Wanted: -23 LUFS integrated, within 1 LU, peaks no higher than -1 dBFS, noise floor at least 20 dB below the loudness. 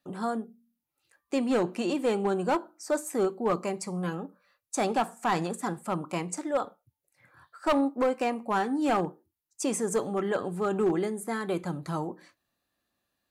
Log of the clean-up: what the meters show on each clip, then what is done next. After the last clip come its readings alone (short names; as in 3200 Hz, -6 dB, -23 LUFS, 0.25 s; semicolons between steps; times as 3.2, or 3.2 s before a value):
clipped 0.9%; flat tops at -19.5 dBFS; loudness -29.5 LUFS; peak -19.5 dBFS; loudness target -23.0 LUFS
-> clip repair -19.5 dBFS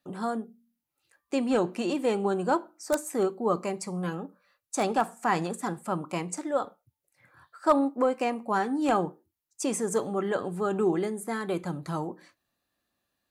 clipped 0.0%; loudness -29.0 LUFS; peak -10.5 dBFS; loudness target -23.0 LUFS
-> gain +6 dB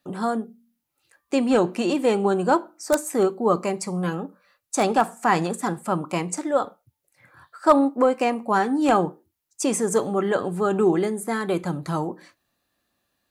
loudness -23.0 LUFS; peak -4.5 dBFS; noise floor -78 dBFS